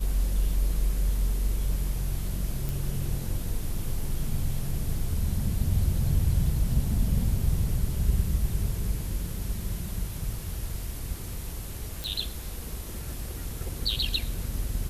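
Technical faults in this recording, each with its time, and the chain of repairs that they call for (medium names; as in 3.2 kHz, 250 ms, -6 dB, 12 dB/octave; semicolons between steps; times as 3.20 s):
2.69 s: pop
12.04 s: pop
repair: de-click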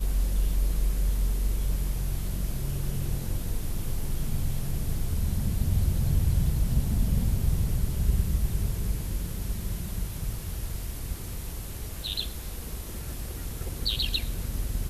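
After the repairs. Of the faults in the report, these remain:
nothing left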